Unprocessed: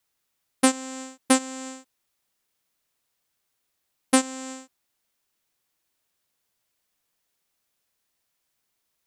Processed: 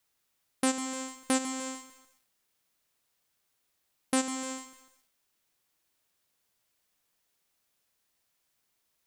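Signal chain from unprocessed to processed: limiter -14 dBFS, peak gain reduction 10.5 dB; lo-fi delay 0.15 s, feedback 55%, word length 8-bit, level -13 dB

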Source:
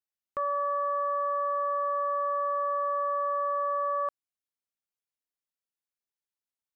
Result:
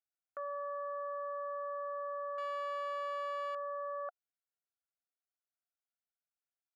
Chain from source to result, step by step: 2.38–3.55 power-law curve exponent 0.35; double band-pass 1000 Hz, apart 0.97 oct; gain +1.5 dB

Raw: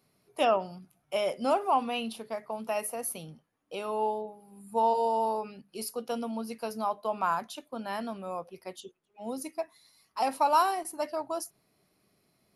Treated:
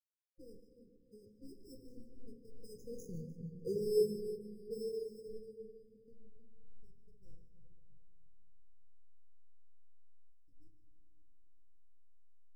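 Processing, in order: Doppler pass-by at 3.48, 7 m/s, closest 1.6 m; backlash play -41.5 dBFS; bell 110 Hz +14 dB 0.62 oct; split-band echo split 610 Hz, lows 0.314 s, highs 0.15 s, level -9 dB; dynamic EQ 1500 Hz, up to -3 dB, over -54 dBFS, Q 0.87; sample-and-hold 10×; FFT band-reject 530–4400 Hz; reverb RT60 3.0 s, pre-delay 7 ms, DRR 1 dB; spectral expander 1.5:1; gain +6 dB

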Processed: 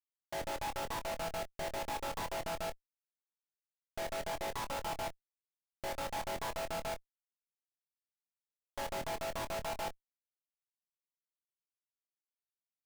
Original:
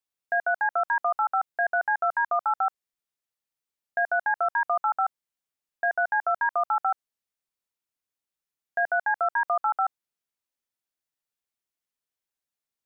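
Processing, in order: chord vocoder major triad, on A3; HPF 390 Hz 12 dB/oct; limiter -20.5 dBFS, peak gain reduction 7.5 dB; soft clip -34 dBFS, distortion -8 dB; Gaussian blur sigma 11 samples; Schmitt trigger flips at -58 dBFS; doubler 24 ms -9 dB; gain +11.5 dB

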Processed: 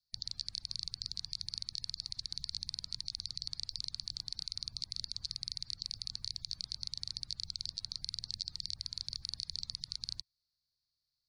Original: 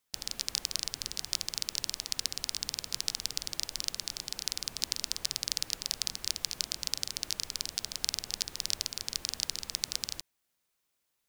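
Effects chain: bin magnitudes rounded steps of 30 dB; EQ curve 120 Hz 0 dB, 430 Hz -30 dB, 1200 Hz -20 dB, 3000 Hz -24 dB, 4400 Hz +7 dB, 7700 Hz -24 dB; limiter -22 dBFS, peak gain reduction 8 dB; gain +1.5 dB

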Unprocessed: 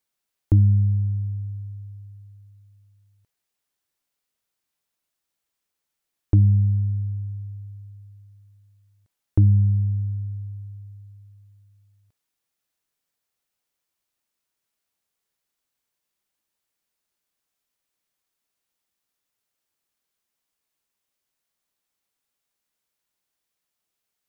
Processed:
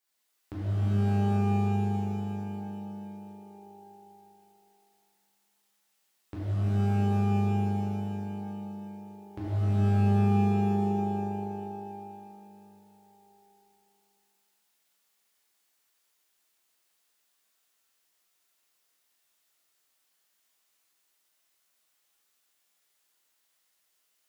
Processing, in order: HPF 430 Hz 6 dB/oct; compressor 2:1, threshold -46 dBFS, peak gain reduction 12.5 dB; flange 0.52 Hz, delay 8.6 ms, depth 3.5 ms, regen +57%; shimmer reverb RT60 2.9 s, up +12 st, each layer -2 dB, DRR -9.5 dB; gain +1.5 dB

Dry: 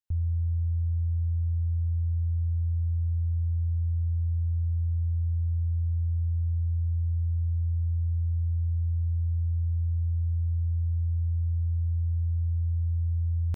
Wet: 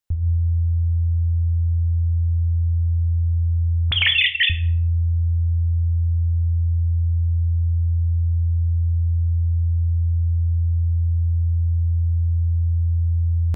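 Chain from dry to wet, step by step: 3.91–4.5 sine-wave speech; shoebox room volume 79 m³, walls mixed, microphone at 0.35 m; gain +7 dB

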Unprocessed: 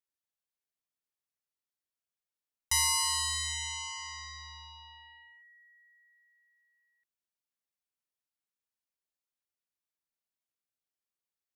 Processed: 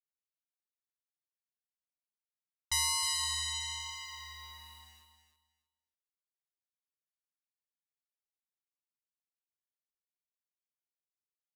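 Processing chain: low-pass opened by the level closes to 2600 Hz, open at -32 dBFS; bell 3700 Hz +9 dB 0.2 oct; vibrato 1.1 Hz 12 cents; sample gate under -50 dBFS; on a send: feedback echo 0.312 s, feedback 20%, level -9 dB; on the sum: gain -4 dB

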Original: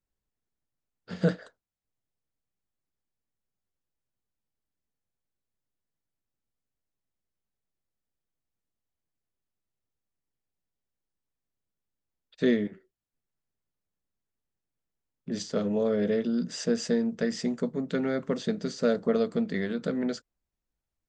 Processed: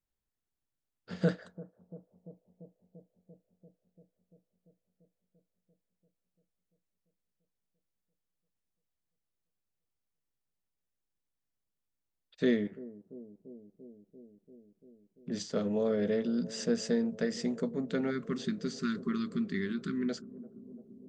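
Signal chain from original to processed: spectral delete 18.1–20.09, 410–1000 Hz; analogue delay 0.342 s, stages 2048, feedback 77%, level -18 dB; gain -3.5 dB

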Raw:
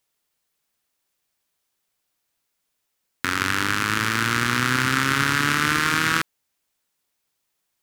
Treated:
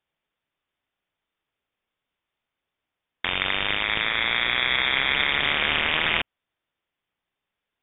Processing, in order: cycle switcher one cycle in 2, inverted; inverted band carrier 3600 Hz; gain -1.5 dB

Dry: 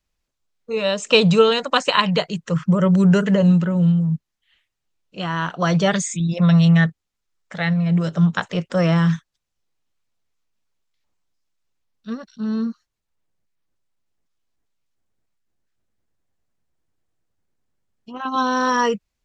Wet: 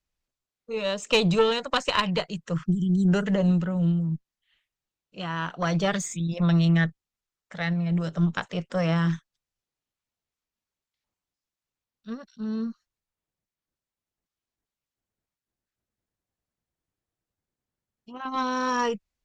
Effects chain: spectral delete 2.66–3.08, 280–3000 Hz; tube stage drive 6 dB, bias 0.6; gain -4 dB

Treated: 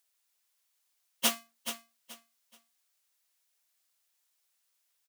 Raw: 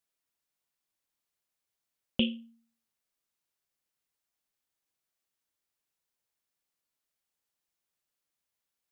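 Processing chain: half-waves squared off; HPF 560 Hz 12 dB/oct; high shelf 3200 Hz +10 dB; plain phase-vocoder stretch 0.57×; feedback echo 0.428 s, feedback 25%, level -10 dB; gain +3 dB

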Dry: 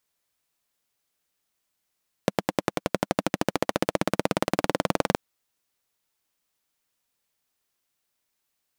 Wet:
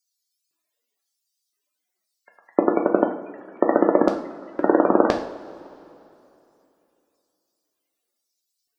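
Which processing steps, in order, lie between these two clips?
loudest bins only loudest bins 64; LFO high-pass square 0.98 Hz 320–4900 Hz; two-slope reverb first 0.49 s, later 2.9 s, from -18 dB, DRR 1.5 dB; gain +4.5 dB

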